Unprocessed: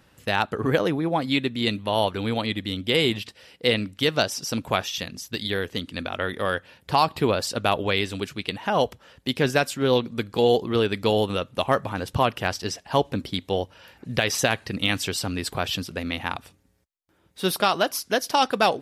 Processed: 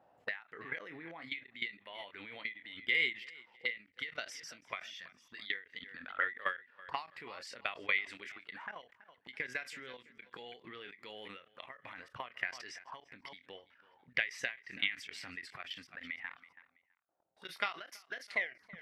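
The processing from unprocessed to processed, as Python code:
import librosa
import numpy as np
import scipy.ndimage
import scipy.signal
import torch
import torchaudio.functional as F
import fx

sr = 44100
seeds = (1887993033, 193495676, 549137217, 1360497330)

p1 = fx.tape_stop_end(x, sr, length_s=0.61)
p2 = fx.noise_reduce_blind(p1, sr, reduce_db=6)
p3 = fx.low_shelf(p2, sr, hz=300.0, db=6.0)
p4 = fx.rider(p3, sr, range_db=3, speed_s=2.0)
p5 = p3 + F.gain(torch.from_numpy(p4), -2.5).numpy()
p6 = fx.auto_wah(p5, sr, base_hz=700.0, top_hz=2000.0, q=6.7, full_db=-19.5, direction='up')
p7 = fx.doubler(p6, sr, ms=24.0, db=-11)
p8 = fx.level_steps(p7, sr, step_db=19)
p9 = p8 + fx.echo_feedback(p8, sr, ms=328, feedback_pct=33, wet_db=-22.5, dry=0)
p10 = fx.end_taper(p9, sr, db_per_s=180.0)
y = F.gain(torch.from_numpy(p10), 8.5).numpy()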